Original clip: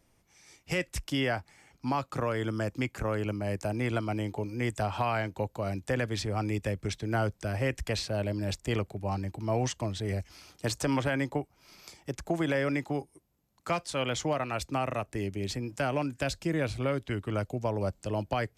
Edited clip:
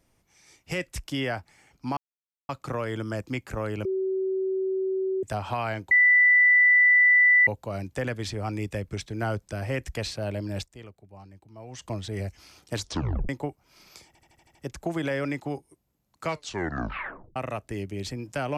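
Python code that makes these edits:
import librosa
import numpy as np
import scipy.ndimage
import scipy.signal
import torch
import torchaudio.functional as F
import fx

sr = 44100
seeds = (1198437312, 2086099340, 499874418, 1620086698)

y = fx.edit(x, sr, fx.insert_silence(at_s=1.97, length_s=0.52),
    fx.bleep(start_s=3.33, length_s=1.38, hz=380.0, db=-24.0),
    fx.insert_tone(at_s=5.39, length_s=1.56, hz=1980.0, db=-14.5),
    fx.fade_down_up(start_s=8.53, length_s=1.22, db=-15.5, fade_s=0.46, curve='exp'),
    fx.tape_stop(start_s=10.67, length_s=0.54),
    fx.stutter(start_s=11.99, slice_s=0.08, count=7),
    fx.tape_stop(start_s=13.68, length_s=1.12), tone=tone)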